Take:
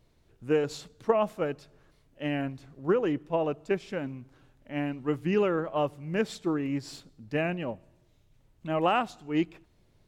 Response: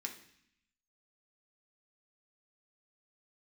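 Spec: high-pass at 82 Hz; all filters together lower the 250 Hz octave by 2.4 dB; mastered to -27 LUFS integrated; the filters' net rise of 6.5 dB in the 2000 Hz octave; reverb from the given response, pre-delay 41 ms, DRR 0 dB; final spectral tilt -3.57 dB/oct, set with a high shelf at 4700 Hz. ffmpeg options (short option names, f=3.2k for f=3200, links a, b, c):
-filter_complex "[0:a]highpass=82,equalizer=f=250:t=o:g=-3.5,equalizer=f=2k:t=o:g=7.5,highshelf=f=4.7k:g=6,asplit=2[a][b];[1:a]atrim=start_sample=2205,adelay=41[c];[b][c]afir=irnorm=-1:irlink=0,volume=1dB[d];[a][d]amix=inputs=2:normalize=0,volume=0.5dB"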